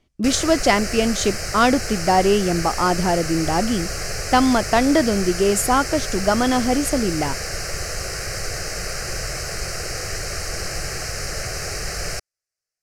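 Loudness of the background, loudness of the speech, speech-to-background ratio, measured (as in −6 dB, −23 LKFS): −27.0 LKFS, −19.5 LKFS, 7.5 dB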